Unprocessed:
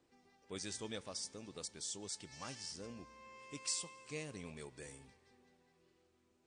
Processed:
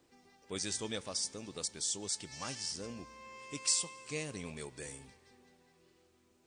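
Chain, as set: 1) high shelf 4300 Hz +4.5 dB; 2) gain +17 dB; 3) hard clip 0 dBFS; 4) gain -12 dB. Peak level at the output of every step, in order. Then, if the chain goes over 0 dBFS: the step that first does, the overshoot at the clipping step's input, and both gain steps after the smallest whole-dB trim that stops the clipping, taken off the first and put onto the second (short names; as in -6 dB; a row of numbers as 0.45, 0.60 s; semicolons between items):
-22.5, -5.5, -5.5, -17.5 dBFS; no overload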